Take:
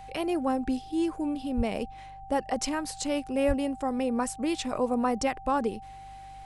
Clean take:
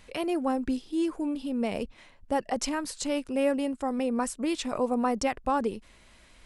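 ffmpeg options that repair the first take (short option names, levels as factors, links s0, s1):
-filter_complex "[0:a]bandreject=f=49.1:t=h:w=4,bandreject=f=98.2:t=h:w=4,bandreject=f=147.3:t=h:w=4,bandreject=f=780:w=30,asplit=3[s0][s1][s2];[s0]afade=t=out:st=1.56:d=0.02[s3];[s1]highpass=f=140:w=0.5412,highpass=f=140:w=1.3066,afade=t=in:st=1.56:d=0.02,afade=t=out:st=1.68:d=0.02[s4];[s2]afade=t=in:st=1.68:d=0.02[s5];[s3][s4][s5]amix=inputs=3:normalize=0,asplit=3[s6][s7][s8];[s6]afade=t=out:st=3.47:d=0.02[s9];[s7]highpass=f=140:w=0.5412,highpass=f=140:w=1.3066,afade=t=in:st=3.47:d=0.02,afade=t=out:st=3.59:d=0.02[s10];[s8]afade=t=in:st=3.59:d=0.02[s11];[s9][s10][s11]amix=inputs=3:normalize=0"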